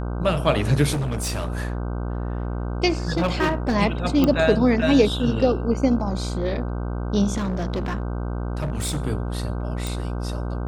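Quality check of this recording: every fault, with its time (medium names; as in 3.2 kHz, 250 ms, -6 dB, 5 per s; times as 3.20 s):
buzz 60 Hz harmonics 26 -27 dBFS
0.92–1.62 s: clipped -21.5 dBFS
3.17–3.76 s: clipped -16.5 dBFS
4.24 s: pop -8 dBFS
7.37–9.02 s: clipped -21 dBFS
9.87 s: pop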